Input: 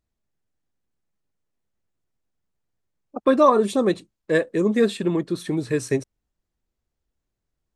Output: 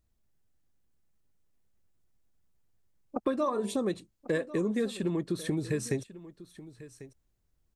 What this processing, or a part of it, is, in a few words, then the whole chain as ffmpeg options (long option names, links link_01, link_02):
ASMR close-microphone chain: -filter_complex "[0:a]lowshelf=frequency=150:gain=7.5,acompressor=threshold=-28dB:ratio=5,highshelf=frequency=7100:gain=6,asettb=1/sr,asplit=3[link_01][link_02][link_03];[link_01]atrim=end=3.324[link_04];[link_02]atrim=start=3.32:end=3.76,asetpts=PTS-STARTPTS,afade=type=in:duration=0.004:curve=qsin,afade=type=out:start_time=0.436:duration=0.004:curve=qsin,bandreject=frequency=45.04:width_type=h:width=4,bandreject=frequency=90.08:width_type=h:width=4,bandreject=frequency=135.12:width_type=h:width=4,bandreject=frequency=180.16:width_type=h:width=4,bandreject=frequency=225.2:width_type=h:width=4,bandreject=frequency=270.24:width_type=h:width=4,bandreject=frequency=315.28:width_type=h:width=4,bandreject=frequency=360.32:width_type=h:width=4,bandreject=frequency=405.36:width_type=h:width=4,bandreject=frequency=450.4:width_type=h:width=4,bandreject=frequency=495.44:width_type=h:width=4,bandreject=frequency=540.48:width_type=h:width=4,bandreject=frequency=585.52:width_type=h:width=4,bandreject=frequency=630.56:width_type=h:width=4,bandreject=frequency=675.6:width_type=h:width=4,bandreject=frequency=720.64:width_type=h:width=4,bandreject=frequency=765.68:width_type=h:width=4,bandreject=frequency=810.72:width_type=h:width=4,bandreject=frequency=855.76:width_type=h:width=4,bandreject=frequency=900.8:width_type=h:width=4,bandreject=frequency=945.84:width_type=h:width=4,bandreject=frequency=990.88:width_type=h:width=4[link_05];[link_03]atrim=start=3.756[link_06];[link_04][link_05]acrossfade=duration=0.004:curve1=hsin:curve2=qsin[link_07];[link_07][link_06]acrossfade=duration=0.004:curve1=qsin:curve2=hsin,aecho=1:1:1095:0.141"